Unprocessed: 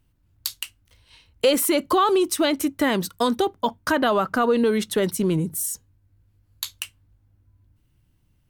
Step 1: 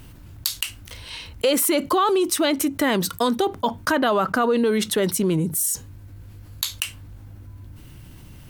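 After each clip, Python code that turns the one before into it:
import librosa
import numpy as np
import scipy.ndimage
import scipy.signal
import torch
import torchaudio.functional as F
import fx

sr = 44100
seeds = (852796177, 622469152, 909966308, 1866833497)

y = fx.low_shelf(x, sr, hz=92.0, db=-6.0)
y = fx.env_flatten(y, sr, amount_pct=50)
y = y * librosa.db_to_amplitude(-2.0)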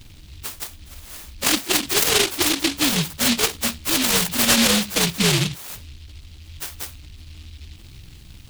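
y = fx.partial_stretch(x, sr, pct=127)
y = fx.noise_mod_delay(y, sr, seeds[0], noise_hz=3300.0, depth_ms=0.48)
y = y * librosa.db_to_amplitude(4.0)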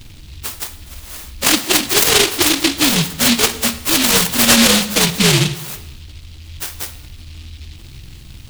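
y = fx.rev_plate(x, sr, seeds[1], rt60_s=1.2, hf_ratio=0.8, predelay_ms=0, drr_db=11.5)
y = y * librosa.db_to_amplitude(5.5)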